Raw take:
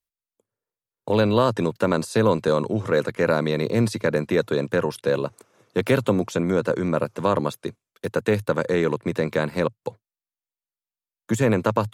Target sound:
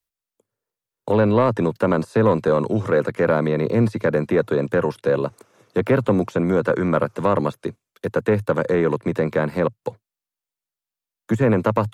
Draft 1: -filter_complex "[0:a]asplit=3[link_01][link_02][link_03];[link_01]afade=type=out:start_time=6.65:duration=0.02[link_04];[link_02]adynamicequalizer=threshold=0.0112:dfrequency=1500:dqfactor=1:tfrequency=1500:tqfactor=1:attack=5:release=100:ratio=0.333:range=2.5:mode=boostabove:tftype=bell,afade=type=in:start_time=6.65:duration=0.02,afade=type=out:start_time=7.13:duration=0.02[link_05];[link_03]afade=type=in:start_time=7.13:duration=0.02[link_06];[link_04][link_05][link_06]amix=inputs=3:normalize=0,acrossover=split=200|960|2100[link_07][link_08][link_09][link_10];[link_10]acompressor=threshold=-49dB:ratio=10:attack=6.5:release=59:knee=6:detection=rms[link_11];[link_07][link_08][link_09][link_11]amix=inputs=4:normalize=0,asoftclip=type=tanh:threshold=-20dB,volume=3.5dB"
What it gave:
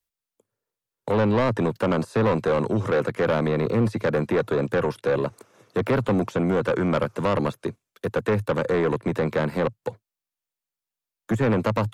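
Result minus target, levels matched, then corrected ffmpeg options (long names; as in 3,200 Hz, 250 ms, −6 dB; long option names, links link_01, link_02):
soft clipping: distortion +12 dB
-filter_complex "[0:a]asplit=3[link_01][link_02][link_03];[link_01]afade=type=out:start_time=6.65:duration=0.02[link_04];[link_02]adynamicequalizer=threshold=0.0112:dfrequency=1500:dqfactor=1:tfrequency=1500:tqfactor=1:attack=5:release=100:ratio=0.333:range=2.5:mode=boostabove:tftype=bell,afade=type=in:start_time=6.65:duration=0.02,afade=type=out:start_time=7.13:duration=0.02[link_05];[link_03]afade=type=in:start_time=7.13:duration=0.02[link_06];[link_04][link_05][link_06]amix=inputs=3:normalize=0,acrossover=split=200|960|2100[link_07][link_08][link_09][link_10];[link_10]acompressor=threshold=-49dB:ratio=10:attack=6.5:release=59:knee=6:detection=rms[link_11];[link_07][link_08][link_09][link_11]amix=inputs=4:normalize=0,asoftclip=type=tanh:threshold=-10dB,volume=3.5dB"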